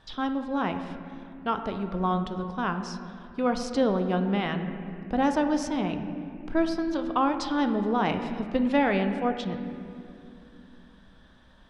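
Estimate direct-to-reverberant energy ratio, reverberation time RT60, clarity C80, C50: 6.5 dB, 2.6 s, 9.0 dB, 8.0 dB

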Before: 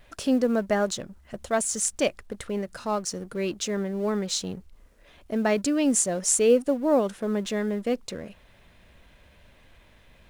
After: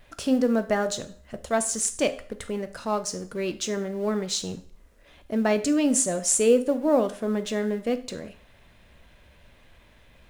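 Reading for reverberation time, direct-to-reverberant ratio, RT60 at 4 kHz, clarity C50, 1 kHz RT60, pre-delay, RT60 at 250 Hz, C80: 0.45 s, 10.0 dB, 0.50 s, 15.0 dB, 0.50 s, 12 ms, 0.45 s, 19.0 dB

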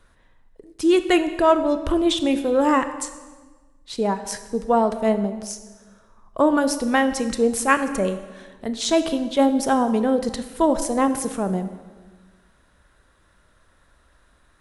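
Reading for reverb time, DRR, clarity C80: 1.4 s, 9.5 dB, 12.5 dB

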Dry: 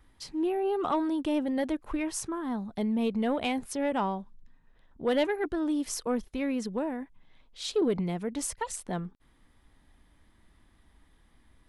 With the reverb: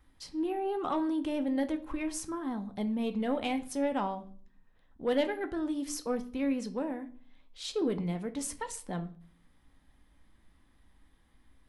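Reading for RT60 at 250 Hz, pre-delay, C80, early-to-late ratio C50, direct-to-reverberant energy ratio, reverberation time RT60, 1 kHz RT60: 0.70 s, 4 ms, 20.0 dB, 15.5 dB, 7.5 dB, 0.45 s, 0.40 s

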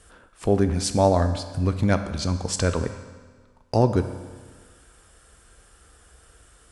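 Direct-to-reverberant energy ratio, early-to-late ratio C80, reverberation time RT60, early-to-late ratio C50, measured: 8.0 dB, 11.5 dB, 1.5 s, 10.0 dB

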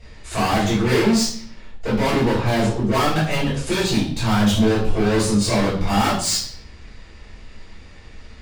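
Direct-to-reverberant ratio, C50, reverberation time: -12.0 dB, 4.5 dB, 0.50 s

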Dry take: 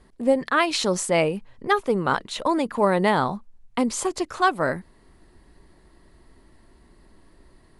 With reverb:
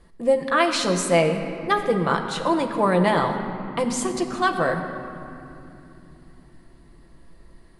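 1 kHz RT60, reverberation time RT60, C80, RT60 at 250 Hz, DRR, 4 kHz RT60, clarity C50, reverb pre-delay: 2.7 s, 2.9 s, 8.0 dB, 4.9 s, 3.0 dB, 1.8 s, 7.0 dB, 6 ms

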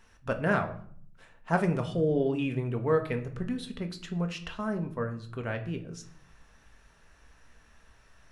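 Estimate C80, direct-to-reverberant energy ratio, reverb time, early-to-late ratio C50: 16.0 dB, 5.0 dB, 0.55 s, 12.5 dB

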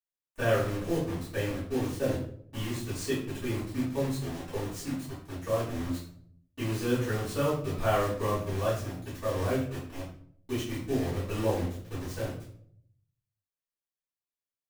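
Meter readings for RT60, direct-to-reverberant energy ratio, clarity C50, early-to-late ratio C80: 0.60 s, -15.5 dB, 3.5 dB, 8.0 dB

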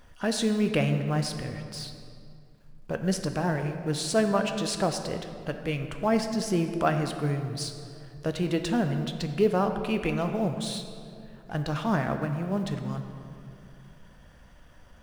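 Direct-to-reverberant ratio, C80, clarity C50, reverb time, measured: 6.0 dB, 8.5 dB, 7.5 dB, 2.5 s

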